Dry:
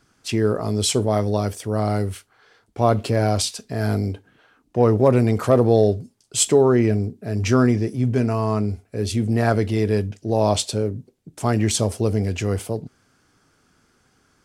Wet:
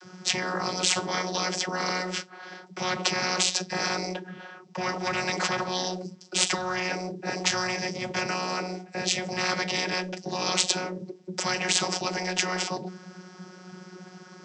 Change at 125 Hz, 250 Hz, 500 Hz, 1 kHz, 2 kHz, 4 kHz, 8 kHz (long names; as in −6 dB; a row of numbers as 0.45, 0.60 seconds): −18.0, −12.5, −12.5, −3.0, +5.0, +3.5, −1.5 decibels